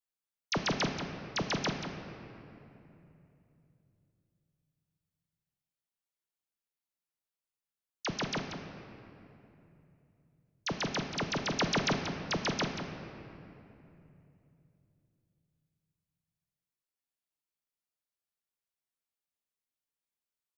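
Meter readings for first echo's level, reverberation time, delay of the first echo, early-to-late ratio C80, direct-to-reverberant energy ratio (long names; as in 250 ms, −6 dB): −9.5 dB, 3.0 s, 184 ms, 5.0 dB, 3.5 dB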